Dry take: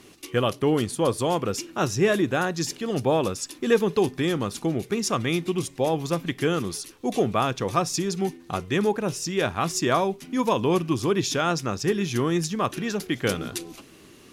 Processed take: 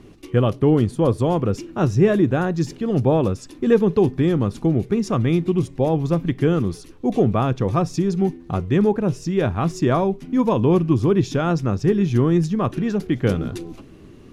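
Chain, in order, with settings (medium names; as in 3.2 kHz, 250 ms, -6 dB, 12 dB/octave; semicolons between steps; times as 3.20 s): tilt EQ -3.5 dB/octave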